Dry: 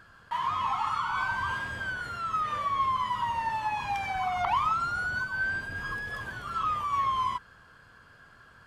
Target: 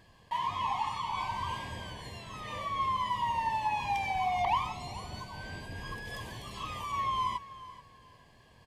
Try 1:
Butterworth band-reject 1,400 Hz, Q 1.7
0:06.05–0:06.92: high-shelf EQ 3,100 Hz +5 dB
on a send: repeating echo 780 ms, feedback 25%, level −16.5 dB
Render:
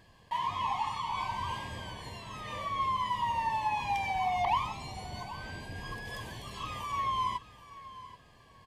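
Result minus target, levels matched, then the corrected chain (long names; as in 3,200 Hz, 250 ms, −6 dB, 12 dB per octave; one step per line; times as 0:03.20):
echo 350 ms late
Butterworth band-reject 1,400 Hz, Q 1.7
0:06.05–0:06.92: high-shelf EQ 3,100 Hz +5 dB
on a send: repeating echo 430 ms, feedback 25%, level −16.5 dB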